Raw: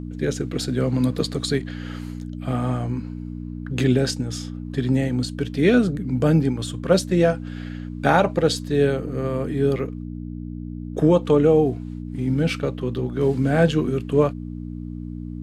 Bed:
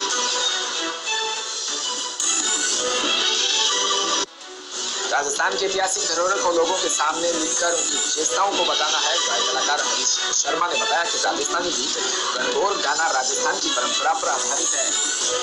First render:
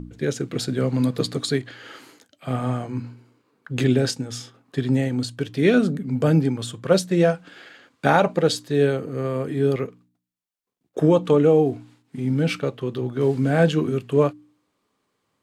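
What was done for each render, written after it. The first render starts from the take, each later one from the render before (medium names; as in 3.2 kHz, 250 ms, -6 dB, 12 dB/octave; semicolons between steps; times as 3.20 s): de-hum 60 Hz, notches 5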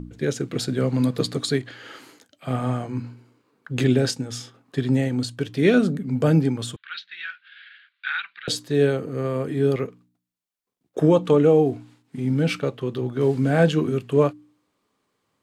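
6.76–8.48 s: elliptic band-pass 1.5–3.9 kHz, stop band 50 dB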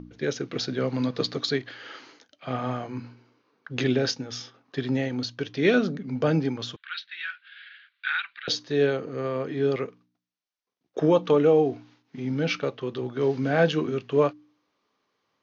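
steep low-pass 6.4 kHz 96 dB/octave; bass shelf 250 Hz -10.5 dB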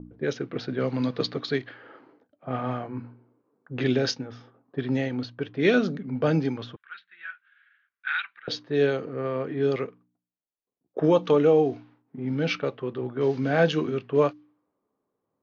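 level-controlled noise filter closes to 640 Hz, open at -18.5 dBFS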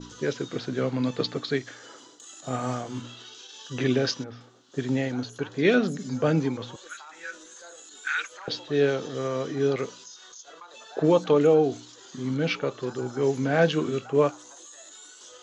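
add bed -25.5 dB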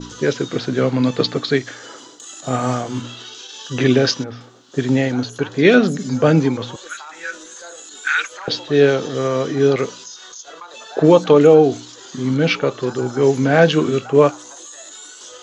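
trim +9.5 dB; peak limiter -1 dBFS, peak gain reduction 2 dB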